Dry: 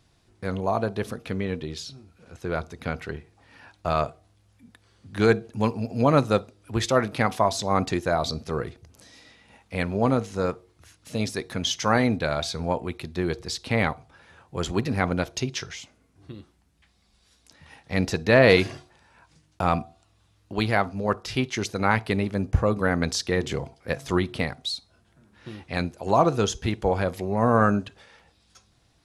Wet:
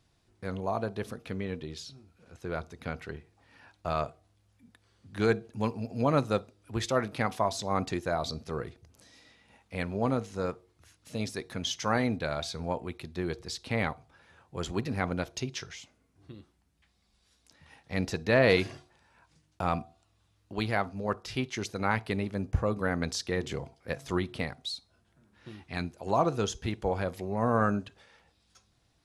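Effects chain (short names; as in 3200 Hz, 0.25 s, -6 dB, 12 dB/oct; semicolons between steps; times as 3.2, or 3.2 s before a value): 25.52–25.94 bell 530 Hz -12.5 dB 0.25 oct; gain -6.5 dB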